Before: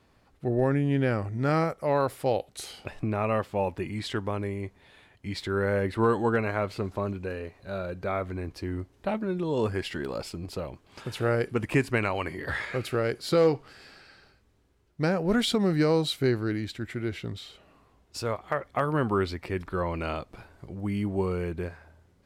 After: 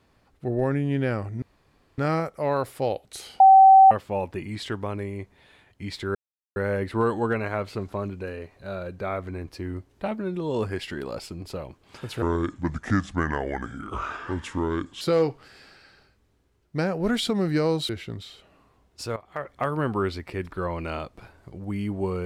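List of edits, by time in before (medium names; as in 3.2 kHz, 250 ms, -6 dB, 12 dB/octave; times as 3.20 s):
1.42 s: insert room tone 0.56 s
2.84–3.35 s: bleep 770 Hz -8.5 dBFS
5.59 s: insert silence 0.41 s
11.25–13.26 s: speed 72%
16.14–17.05 s: delete
18.32–18.72 s: fade in, from -13.5 dB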